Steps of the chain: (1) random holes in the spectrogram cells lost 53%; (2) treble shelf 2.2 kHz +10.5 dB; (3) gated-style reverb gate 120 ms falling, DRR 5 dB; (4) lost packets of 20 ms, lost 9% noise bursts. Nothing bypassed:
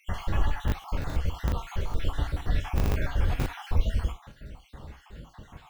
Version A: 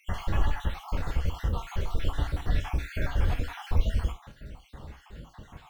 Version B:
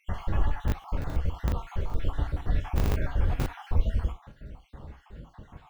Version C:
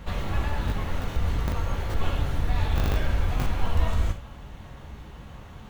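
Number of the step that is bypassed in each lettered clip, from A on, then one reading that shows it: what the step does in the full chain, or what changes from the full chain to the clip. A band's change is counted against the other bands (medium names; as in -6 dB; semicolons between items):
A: 4, 250 Hz band -2.0 dB; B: 2, 4 kHz band -5.0 dB; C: 1, crest factor change -2.5 dB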